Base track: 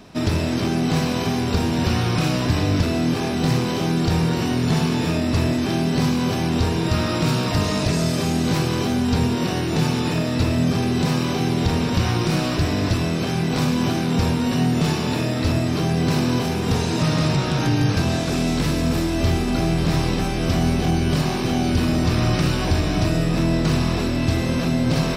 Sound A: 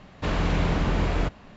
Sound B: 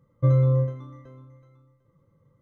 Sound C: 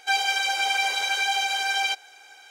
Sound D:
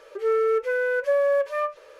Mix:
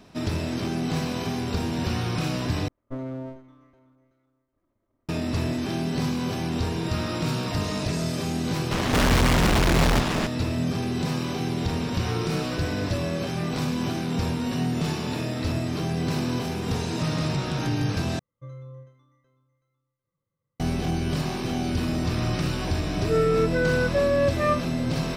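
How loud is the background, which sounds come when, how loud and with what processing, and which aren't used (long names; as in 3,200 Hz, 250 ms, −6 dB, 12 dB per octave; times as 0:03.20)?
base track −6.5 dB
0:02.68: overwrite with B −9.5 dB + lower of the sound and its delayed copy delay 3.2 ms
0:08.71: mix in A −6 dB + fuzz pedal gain 51 dB, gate −49 dBFS
0:11.84: mix in D −13.5 dB
0:18.19: overwrite with B −15.5 dB + tilt shelving filter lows −6.5 dB, about 1,400 Hz
0:22.87: mix in D −0.5 dB + speech leveller
not used: C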